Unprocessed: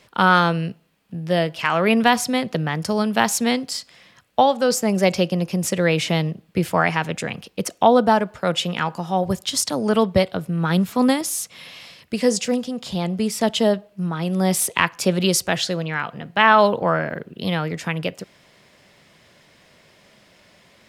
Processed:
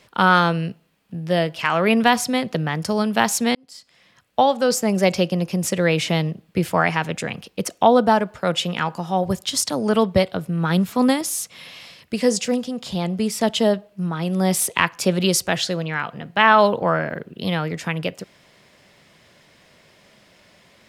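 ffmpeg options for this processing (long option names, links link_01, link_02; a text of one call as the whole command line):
ffmpeg -i in.wav -filter_complex "[0:a]asplit=2[link_01][link_02];[link_01]atrim=end=3.55,asetpts=PTS-STARTPTS,afade=type=out:start_time=3.546:duration=0.004:curve=hsin[link_03];[link_02]atrim=start=3.55,asetpts=PTS-STARTPTS,afade=type=in:duration=0.96[link_04];[link_03][link_04]concat=n=2:v=0:a=1" out.wav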